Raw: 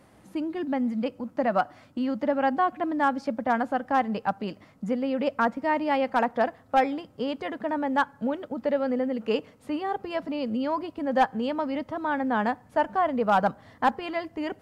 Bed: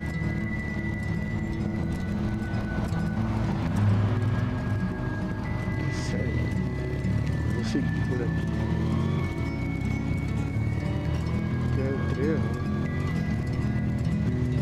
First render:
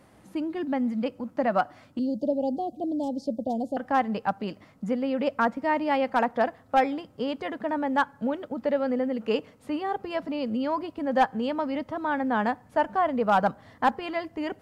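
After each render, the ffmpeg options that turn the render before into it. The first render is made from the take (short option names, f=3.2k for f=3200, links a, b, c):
-filter_complex "[0:a]asettb=1/sr,asplit=3[a][b][c];[a]atrim=end=1.994[d];[b]atrim=start=1.99:end=3.77,asetpts=PTS-STARTPTS,afade=t=in:d=0.004:c=qsin,afade=t=out:st=1.776:d=0.004:c=qsin,asuperstop=centerf=1600:order=8:qfactor=0.51[e];[c]atrim=start=3.766[f];[d][e]acrossfade=d=0.004:c1=hsin:c2=qsin[g];[g][f]acrossfade=d=0.004:c1=qsin:c2=hsin"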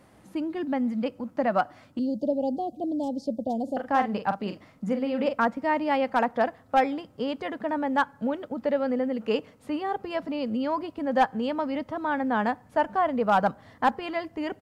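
-filter_complex "[0:a]asplit=3[a][b][c];[a]afade=t=out:st=3.67:d=0.02[d];[b]asplit=2[e][f];[f]adelay=43,volume=-8dB[g];[e][g]amix=inputs=2:normalize=0,afade=t=in:st=3.67:d=0.02,afade=t=out:st=5.43:d=0.02[h];[c]afade=t=in:st=5.43:d=0.02[i];[d][h][i]amix=inputs=3:normalize=0"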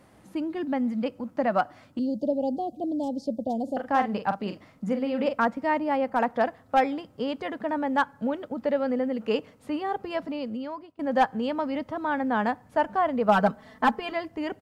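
-filter_complex "[0:a]asettb=1/sr,asplit=3[a][b][c];[a]atrim=end=5.784[d];[b]atrim=start=5.78:end=6.2,asetpts=PTS-STARTPTS,afade=t=in:d=0.004:c=qsin,afade=t=out:st=0.416:d=0.004:c=qsin,equalizer=f=3.6k:t=o:w=2.1:g=-8[e];[c]atrim=start=6.196[f];[d][e]acrossfade=d=0.004:c1=hsin:c2=qsin[g];[g][f]acrossfade=d=0.004:c1=qsin:c2=hsin,asettb=1/sr,asplit=3[h][i][j];[h]atrim=end=13.284[k];[i]atrim=start=13.28:end=14.12,asetpts=PTS-STARTPTS,afade=t=in:d=0.004:c=qsin,afade=t=out:st=0.836:d=0.004:c=qsin,aecho=1:1:4.6:0.78,atrim=end_sample=37044[l];[j]atrim=start=14.116[m];[k][l]acrossfade=d=0.004:c1=hsin:c2=qsin[n];[n][m]acrossfade=d=0.004:c1=qsin:c2=hsin,asplit=2[o][p];[o]atrim=end=10.99,asetpts=PTS-STARTPTS,afade=t=out:st=10.19:d=0.8:silence=0.0630957[q];[p]atrim=start=10.99,asetpts=PTS-STARTPTS,afade=t=in:d=0.004:c=hsin:silence=0.0630957[r];[q][r]concat=n=2:v=0:a=1"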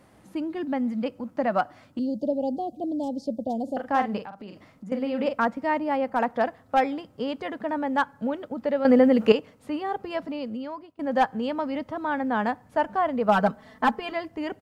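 -filter_complex "[0:a]asettb=1/sr,asplit=3[a][b][c];[a]atrim=end=4.244[d];[b]atrim=start=4.24:end=4.92,asetpts=PTS-STARTPTS,afade=t=in:d=0.004:c=qsin,afade=t=out:st=0.676:d=0.004:c=qsin,acompressor=threshold=-38dB:ratio=4:attack=3.2:release=140:knee=1:detection=peak[e];[c]atrim=start=4.916[f];[d][e]acrossfade=d=0.004:c1=hsin:c2=qsin[g];[g][f]acrossfade=d=0.004:c1=qsin:c2=hsin,asplit=3[h][i][j];[h]atrim=end=8.852[k];[i]atrim=start=8.848:end=9.322,asetpts=PTS-STARTPTS,volume=10dB[l];[j]atrim=start=9.318[m];[k][l]acrossfade=d=0.004:c1=hsin:c2=hsin[n];[n][m]acrossfade=d=0.004:c1=hsin:c2=hsin"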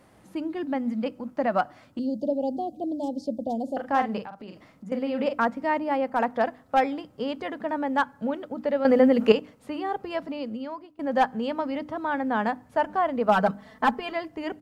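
-af "bandreject=f=50:t=h:w=6,bandreject=f=100:t=h:w=6,bandreject=f=150:t=h:w=6,bandreject=f=200:t=h:w=6,bandreject=f=250:t=h:w=6,bandreject=f=300:t=h:w=6"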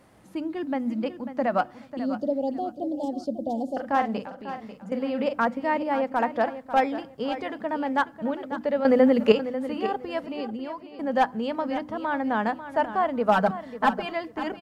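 -af "aecho=1:1:544|1088|1632:0.251|0.0628|0.0157"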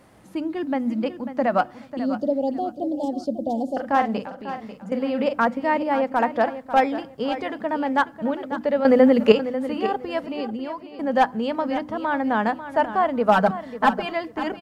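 -af "volume=3.5dB"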